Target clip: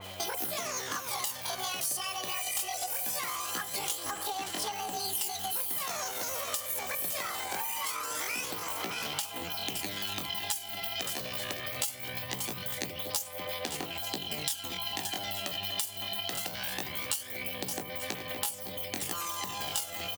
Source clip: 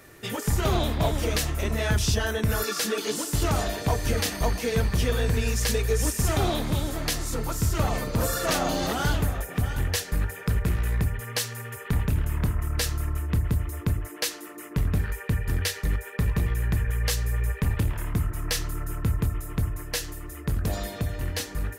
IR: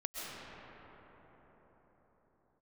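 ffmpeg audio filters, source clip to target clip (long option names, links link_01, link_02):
-filter_complex "[0:a]highshelf=frequency=6400:gain=5,asplit=2[link_01][link_02];[link_02]aecho=0:1:613:0.237[link_03];[link_01][link_03]amix=inputs=2:normalize=0,asetrate=47628,aresample=44100,highpass=350,aphaser=in_gain=1:out_gain=1:delay=2.7:decay=0.41:speed=0.22:type=sinusoidal,aeval=exprs='val(0)+0.00224*(sin(2*PI*60*n/s)+sin(2*PI*2*60*n/s)/2+sin(2*PI*3*60*n/s)/3+sin(2*PI*4*60*n/s)/4+sin(2*PI*5*60*n/s)/5)':channel_layout=same,asplit=2[link_04][link_05];[link_05]aecho=0:1:882:0.075[link_06];[link_04][link_06]amix=inputs=2:normalize=0,acompressor=threshold=-36dB:ratio=20,acrusher=bits=7:mode=log:mix=0:aa=0.000001,asetrate=70004,aresample=44100,atempo=0.629961,adynamicequalizer=threshold=0.00224:dfrequency=2800:dqfactor=0.7:tfrequency=2800:tqfactor=0.7:attack=5:release=100:ratio=0.375:range=2.5:mode=boostabove:tftype=highshelf,volume=3.5dB"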